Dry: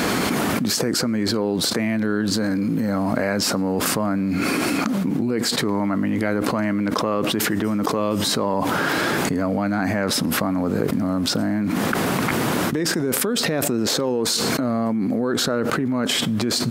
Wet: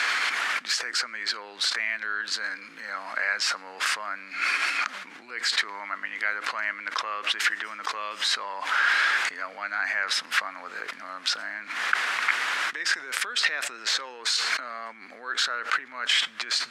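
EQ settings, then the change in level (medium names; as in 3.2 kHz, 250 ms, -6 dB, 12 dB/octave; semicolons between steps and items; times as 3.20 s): resonant high-pass 1.7 kHz, resonance Q 1.7; distance through air 89 m; 0.0 dB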